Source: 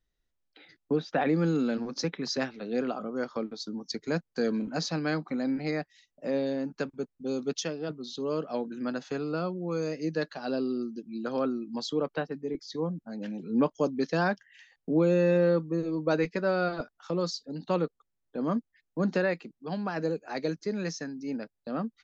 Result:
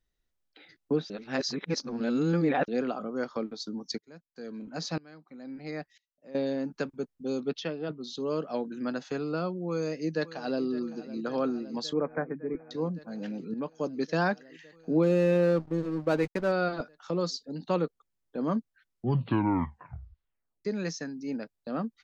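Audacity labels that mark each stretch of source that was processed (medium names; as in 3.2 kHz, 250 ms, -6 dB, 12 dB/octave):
1.100000	2.680000	reverse
3.980000	6.350000	sawtooth tremolo in dB swelling 1 Hz, depth 25 dB
7.400000	8.020000	low-pass 4.1 kHz 24 dB/octave
9.680000	10.640000	echo throw 560 ms, feedback 85%, level -16 dB
11.930000	12.710000	brick-wall FIR low-pass 2.5 kHz
13.540000	14.180000	fade in linear, from -13 dB
15.030000	16.520000	hysteresis with a dead band play -33.5 dBFS
18.490000	18.490000	tape stop 2.16 s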